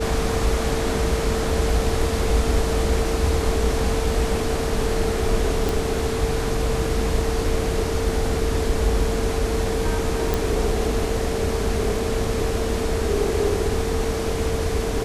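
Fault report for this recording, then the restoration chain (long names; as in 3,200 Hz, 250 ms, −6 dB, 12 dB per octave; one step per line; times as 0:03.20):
whistle 450 Hz −26 dBFS
0:05.69: click
0:10.34: click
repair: click removal
notch filter 450 Hz, Q 30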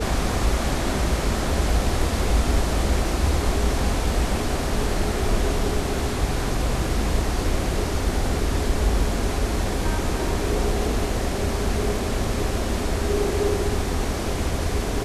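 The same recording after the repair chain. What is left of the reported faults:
none of them is left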